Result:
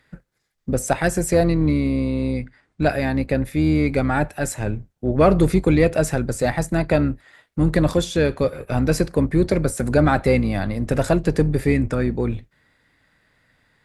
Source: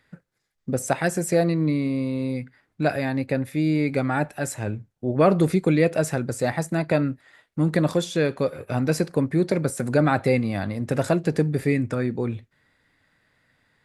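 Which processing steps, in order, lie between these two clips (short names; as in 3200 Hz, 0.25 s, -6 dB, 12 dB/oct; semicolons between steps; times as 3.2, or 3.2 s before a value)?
octaver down 2 oct, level -6 dB; 1.96–2.84 steep low-pass 10000 Hz 72 dB/oct; in parallel at -6.5 dB: one-sided clip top -16.5 dBFS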